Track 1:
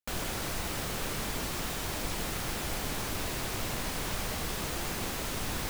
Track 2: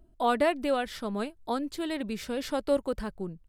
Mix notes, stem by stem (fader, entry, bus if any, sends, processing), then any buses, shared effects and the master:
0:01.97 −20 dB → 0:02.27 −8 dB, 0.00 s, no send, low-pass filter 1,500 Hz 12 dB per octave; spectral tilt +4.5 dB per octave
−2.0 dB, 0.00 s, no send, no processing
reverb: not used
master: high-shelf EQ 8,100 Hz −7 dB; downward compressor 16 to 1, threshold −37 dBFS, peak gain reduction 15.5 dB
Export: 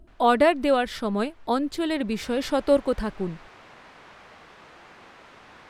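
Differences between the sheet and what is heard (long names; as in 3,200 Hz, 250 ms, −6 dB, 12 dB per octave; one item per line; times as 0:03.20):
stem 2 −2.0 dB → +6.5 dB
master: missing downward compressor 16 to 1, threshold −37 dBFS, peak gain reduction 15.5 dB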